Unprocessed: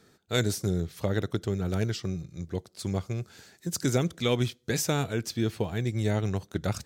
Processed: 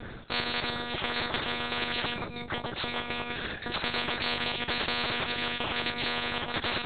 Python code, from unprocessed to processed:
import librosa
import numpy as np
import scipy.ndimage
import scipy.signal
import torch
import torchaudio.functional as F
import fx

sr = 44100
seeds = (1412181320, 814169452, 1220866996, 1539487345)

p1 = fx.reverse_delay(x, sr, ms=119, wet_db=-7.5)
p2 = fx.vibrato(p1, sr, rate_hz=3.6, depth_cents=25.0)
p3 = p2 + fx.room_early_taps(p2, sr, ms=(13, 33), db=(-16.5, -9.0), dry=0)
p4 = fx.lpc_monotone(p3, sr, seeds[0], pitch_hz=240.0, order=8)
p5 = fx.spectral_comp(p4, sr, ratio=10.0)
y = p5 * 10.0 ** (-1.5 / 20.0)